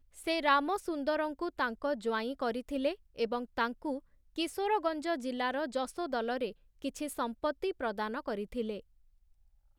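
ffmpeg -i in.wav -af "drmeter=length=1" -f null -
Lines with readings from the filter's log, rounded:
Channel 1: DR: 11.1
Overall DR: 11.1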